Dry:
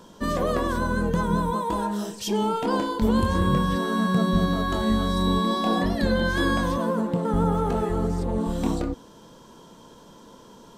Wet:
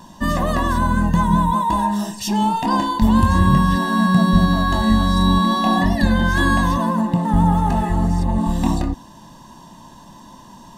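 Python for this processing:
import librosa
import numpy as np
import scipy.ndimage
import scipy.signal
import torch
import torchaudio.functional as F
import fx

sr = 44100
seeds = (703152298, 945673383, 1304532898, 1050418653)

y = x + 0.88 * np.pad(x, (int(1.1 * sr / 1000.0), 0))[:len(x)]
y = F.gain(torch.from_numpy(y), 4.0).numpy()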